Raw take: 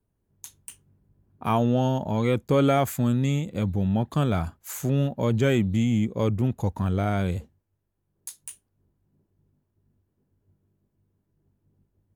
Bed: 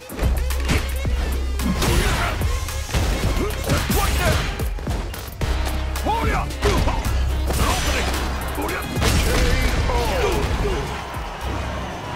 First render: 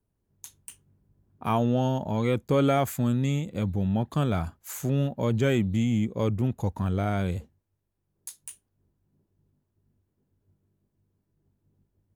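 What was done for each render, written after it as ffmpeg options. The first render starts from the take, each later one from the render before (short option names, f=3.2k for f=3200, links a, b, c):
-af "volume=-2dB"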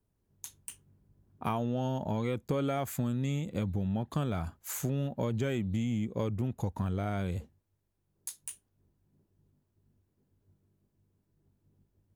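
-af "acompressor=threshold=-28dB:ratio=6"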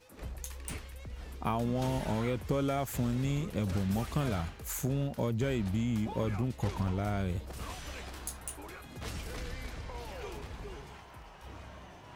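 -filter_complex "[1:a]volume=-22dB[a];[0:a][a]amix=inputs=2:normalize=0"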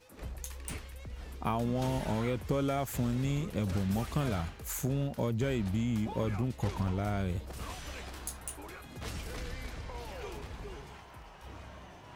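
-af anull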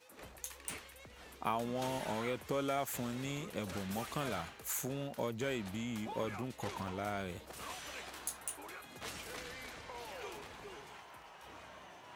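-af "highpass=f=540:p=1,equalizer=f=5k:t=o:w=0.29:g=-2.5"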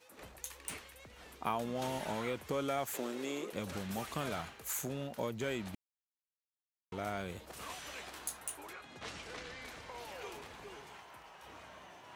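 -filter_complex "[0:a]asettb=1/sr,asplit=3[a][b][c];[a]atrim=end=2.944[d];[b]atrim=start=2.94:end=3.53,asetpts=PTS-STARTPTS,afade=t=in:d=0.004:c=qsin,afade=t=out:st=0.586:d=0.004:c=qsin,highpass=f=360:t=q:w=2.6[e];[c]atrim=start=3.526[f];[d][e]acrossfade=d=0.004:c1=hsin:c2=qsin[g];[g][f]acrossfade=d=0.004:c1=qsin:c2=hsin,asettb=1/sr,asplit=3[h][i][j];[h]atrim=end=8.734[k];[i]atrim=start=8.73:end=9.65,asetpts=PTS-STARTPTS,afade=t=in:d=0.004:c=qsin,afade=t=out:st=0.916:d=0.004:c=qsin,lowpass=6.3k[l];[j]atrim=start=9.646[m];[k][l]acrossfade=d=0.004:c1=hsin:c2=qsin[n];[n][m]acrossfade=d=0.004:c1=qsin:c2=hsin,asplit=3[o][p][q];[o]atrim=end=5.75,asetpts=PTS-STARTPTS,afade=t=out:st=5.746:d=0.004:c=hsin[r];[p]atrim=start=5.75:end=6.92,asetpts=PTS-STARTPTS,volume=0[s];[q]atrim=start=6.92,asetpts=PTS-STARTPTS,afade=t=in:d=0.004:c=hsin[t];[r][s][t]concat=n=3:v=0:a=1"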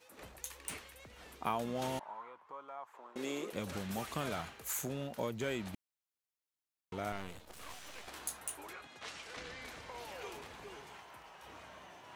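-filter_complex "[0:a]asettb=1/sr,asplit=3[a][b][c];[a]atrim=end=1.994[d];[b]atrim=start=1.99:end=3.16,asetpts=PTS-STARTPTS,afade=t=in:d=0.004:c=qsin,afade=t=out:st=1.166:d=0.004:c=qsin,bandpass=f=1k:t=q:w=5[e];[c]atrim=start=3.156[f];[d][e]acrossfade=d=0.004:c1=hsin:c2=qsin[g];[g][f]acrossfade=d=0.004:c1=qsin:c2=hsin,asettb=1/sr,asplit=3[h][i][j];[h]atrim=end=7.124[k];[i]atrim=start=7.12:end=8.08,asetpts=PTS-STARTPTS,afade=t=in:d=0.004:c=qsin,afade=t=out:st=0.956:d=0.004:c=qsin,aeval=exprs='max(val(0),0)':c=same[l];[j]atrim=start=8.076[m];[k][l]acrossfade=d=0.004:c1=hsin:c2=qsin[n];[n][m]acrossfade=d=0.004:c1=qsin:c2=hsin,asettb=1/sr,asplit=3[o][p][q];[o]atrim=end=8.874[r];[p]atrim=start=8.87:end=9.37,asetpts=PTS-STARTPTS,afade=t=in:d=0.004:c=qsin,afade=t=out:st=0.496:d=0.004:c=qsin,lowshelf=f=400:g=-11[s];[q]atrim=start=9.366[t];[r][s]acrossfade=d=0.004:c1=hsin:c2=qsin[u];[u][t]acrossfade=d=0.004:c1=qsin:c2=hsin"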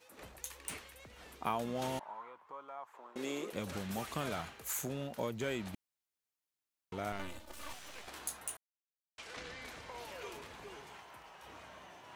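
-filter_complex "[0:a]asettb=1/sr,asplit=3[a][b][c];[a]atrim=end=7.194[d];[b]atrim=start=7.19:end=7.73,asetpts=PTS-STARTPTS,afade=t=in:d=0.004:c=qsin,afade=t=out:st=0.536:d=0.004:c=qsin,aecho=1:1:3.4:0.89,atrim=end_sample=23814[e];[c]atrim=start=7.726[f];[d][e]acrossfade=d=0.004:c1=hsin:c2=qsin[g];[g][f]acrossfade=d=0.004:c1=qsin:c2=hsin,asettb=1/sr,asplit=3[h][i][j];[h]atrim=end=10.064[k];[i]atrim=start=10.06:end=10.51,asetpts=PTS-STARTPTS,afade=t=in:d=0.004:c=qsin,afade=t=out:st=0.446:d=0.004:c=qsin,asuperstop=centerf=790:order=4:qfactor=7.8[l];[j]atrim=start=10.506[m];[k][l]acrossfade=d=0.004:c1=hsin:c2=qsin[n];[n][m]acrossfade=d=0.004:c1=qsin:c2=hsin,asplit=3[o][p][q];[o]atrim=end=8.57,asetpts=PTS-STARTPTS,afade=t=out:st=8.566:d=0.004:c=hsin[r];[p]atrim=start=8.57:end=9.18,asetpts=PTS-STARTPTS,volume=0[s];[q]atrim=start=9.18,asetpts=PTS-STARTPTS,afade=t=in:d=0.004:c=hsin[t];[r][s][t]concat=n=3:v=0:a=1"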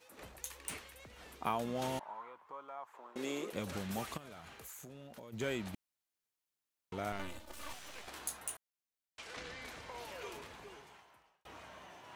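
-filter_complex "[0:a]asplit=3[a][b][c];[a]afade=t=out:st=4.16:d=0.02[d];[b]acompressor=threshold=-47dB:ratio=10:attack=3.2:release=140:knee=1:detection=peak,afade=t=in:st=4.16:d=0.02,afade=t=out:st=5.32:d=0.02[e];[c]afade=t=in:st=5.32:d=0.02[f];[d][e][f]amix=inputs=3:normalize=0,asplit=2[g][h];[g]atrim=end=11.45,asetpts=PTS-STARTPTS,afade=t=out:st=10.4:d=1.05[i];[h]atrim=start=11.45,asetpts=PTS-STARTPTS,afade=t=in:d=0.004:c=hsin[j];[i][j]concat=n=2:v=0:a=1"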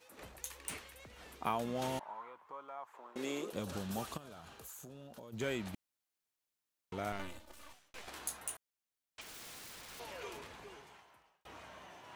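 -filter_complex "[0:a]asettb=1/sr,asplit=3[a][b][c];[a]atrim=end=3.414[d];[b]atrim=start=3.41:end=5.37,asetpts=PTS-STARTPTS,afade=t=in:d=0.004:c=qsin,afade=t=out:st=1.956:d=0.004:c=qsin,equalizer=f=2.1k:w=3:g=-9[e];[c]atrim=start=5.366[f];[d][e]acrossfade=d=0.004:c1=hsin:c2=qsin[g];[g][f]acrossfade=d=0.004:c1=qsin:c2=hsin,asettb=1/sr,asplit=3[h][i][j];[h]atrim=end=9.214[k];[i]atrim=start=9.21:end=10,asetpts=PTS-STARTPTS,afade=t=in:d=0.004:c=qsin,afade=t=out:st=0.786:d=0.004:c=qsin,aeval=exprs='(mod(200*val(0)+1,2)-1)/200':c=same[l];[j]atrim=start=9.996[m];[k][l]acrossfade=d=0.004:c1=hsin:c2=qsin[n];[n][m]acrossfade=d=0.004:c1=qsin:c2=hsin,asplit=2[o][p];[o]atrim=end=7.94,asetpts=PTS-STARTPTS,afade=t=out:st=7.14:d=0.8[q];[p]atrim=start=7.94,asetpts=PTS-STARTPTS,afade=t=in:d=0.004:c=hsin[r];[q][r]concat=n=2:v=0:a=1"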